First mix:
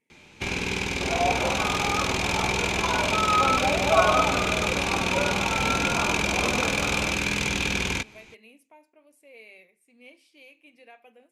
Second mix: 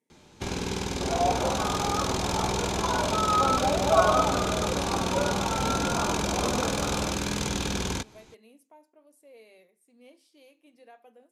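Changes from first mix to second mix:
speech: add high-pass filter 150 Hz
master: add parametric band 2,400 Hz −14 dB 0.67 octaves

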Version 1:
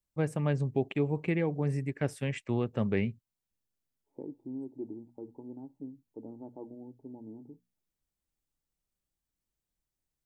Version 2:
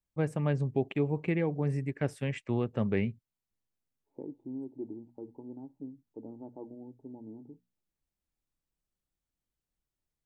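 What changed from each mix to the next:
first voice: add high-shelf EQ 4,800 Hz −5.5 dB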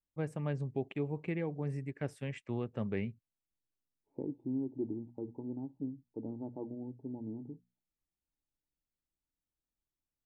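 first voice −6.5 dB
second voice: add low-shelf EQ 190 Hz +11 dB

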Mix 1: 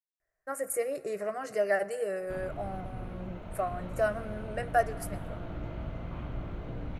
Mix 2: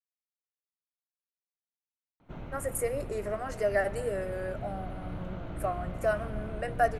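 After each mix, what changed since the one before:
speech: entry +2.05 s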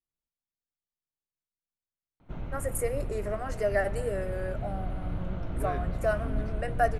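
second voice: unmuted
master: add low-shelf EQ 99 Hz +9.5 dB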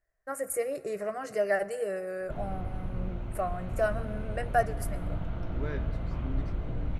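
first voice: entry −2.25 s

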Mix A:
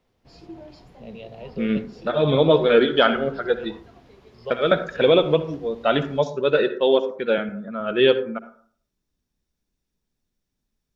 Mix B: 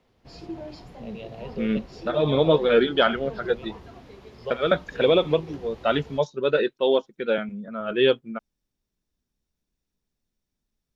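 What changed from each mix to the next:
background +6.0 dB
reverb: off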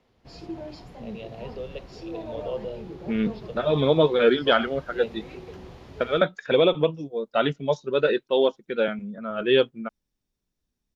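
second voice: entry +1.50 s

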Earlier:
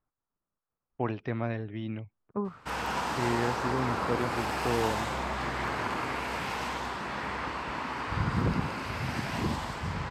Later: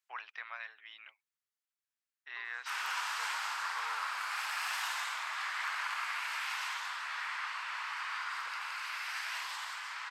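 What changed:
first voice: entry −0.90 s
second voice: remove low-pass with resonance 1,200 Hz, resonance Q 2.6
master: add high-pass filter 1,200 Hz 24 dB per octave

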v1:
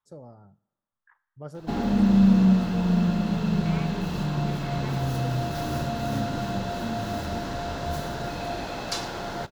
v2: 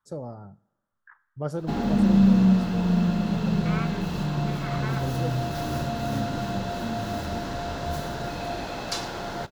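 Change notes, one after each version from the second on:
first voice +9.0 dB
second voice: add parametric band 1,400 Hz +12 dB 0.81 octaves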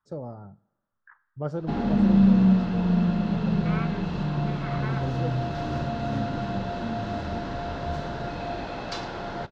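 master: add high-frequency loss of the air 160 metres

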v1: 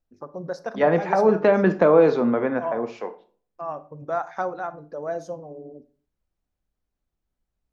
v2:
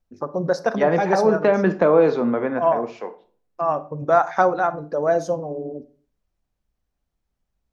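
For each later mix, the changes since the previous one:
first voice +10.0 dB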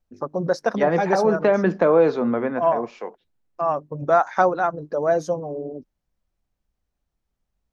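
reverb: off

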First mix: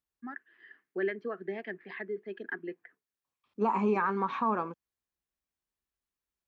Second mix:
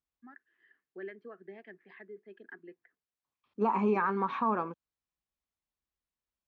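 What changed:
first voice −11.0 dB
master: add high-frequency loss of the air 73 metres

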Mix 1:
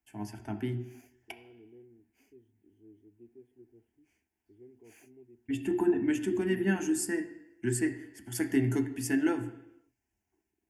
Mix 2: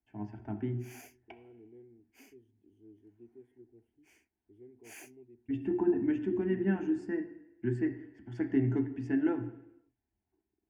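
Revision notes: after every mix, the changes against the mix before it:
first voice: add head-to-tape spacing loss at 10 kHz 44 dB
background +10.5 dB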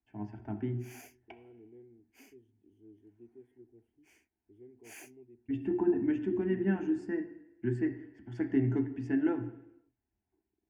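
nothing changed

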